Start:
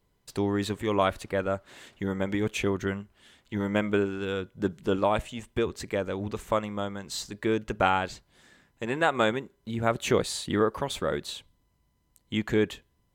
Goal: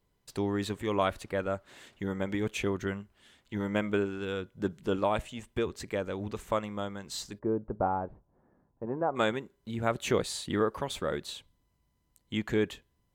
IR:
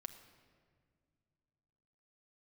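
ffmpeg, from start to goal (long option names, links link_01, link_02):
-filter_complex "[0:a]asplit=3[link_01][link_02][link_03];[link_01]afade=type=out:start_time=7.38:duration=0.02[link_04];[link_02]lowpass=frequency=1000:width=0.5412,lowpass=frequency=1000:width=1.3066,afade=type=in:start_time=7.38:duration=0.02,afade=type=out:start_time=9.15:duration=0.02[link_05];[link_03]afade=type=in:start_time=9.15:duration=0.02[link_06];[link_04][link_05][link_06]amix=inputs=3:normalize=0,volume=-3.5dB"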